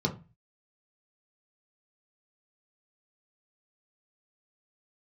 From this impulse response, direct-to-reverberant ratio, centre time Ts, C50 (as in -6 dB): 0.0 dB, 11 ms, 14.0 dB